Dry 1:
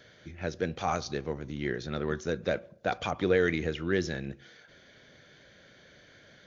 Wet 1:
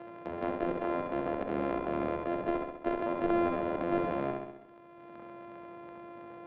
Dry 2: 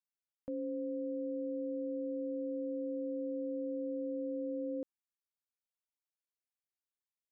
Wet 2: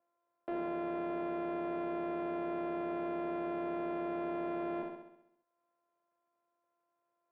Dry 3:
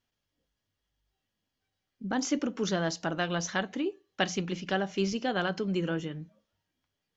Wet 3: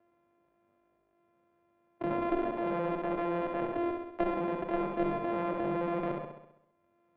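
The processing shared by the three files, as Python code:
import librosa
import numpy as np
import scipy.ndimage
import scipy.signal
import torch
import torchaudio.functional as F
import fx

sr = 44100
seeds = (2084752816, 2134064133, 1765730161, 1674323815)

y = np.r_[np.sort(x[:len(x) // 128 * 128].reshape(-1, 128), axis=1).ravel(), x[len(x) // 128 * 128:]]
y = fx.peak_eq(y, sr, hz=580.0, db=8.0, octaves=0.64)
y = fx.level_steps(y, sr, step_db=12)
y = fx.leveller(y, sr, passes=2)
y = scipy.signal.sosfilt(scipy.signal.butter(2, 350.0, 'highpass', fs=sr, output='sos'), y)
y = fx.cheby_harmonics(y, sr, harmonics=(2, 4), levels_db=(-17, -36), full_scale_db=-7.0)
y = scipy.signal.sosfilt(scipy.signal.butter(4, 2700.0, 'lowpass', fs=sr, output='sos'), y)
y = fx.tilt_eq(y, sr, slope=-4.0)
y = fx.room_flutter(y, sr, wall_m=11.3, rt60_s=0.61)
y = fx.transient(y, sr, attack_db=-5, sustain_db=3)
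y = fx.band_squash(y, sr, depth_pct=70)
y = y * librosa.db_to_amplitude(-4.0)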